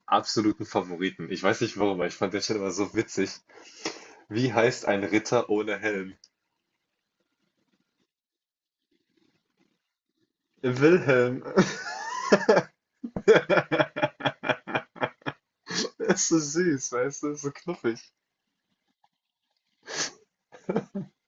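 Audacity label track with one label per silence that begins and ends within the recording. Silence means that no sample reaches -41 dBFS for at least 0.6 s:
6.240000	10.640000	silence
18.010000	19.870000	silence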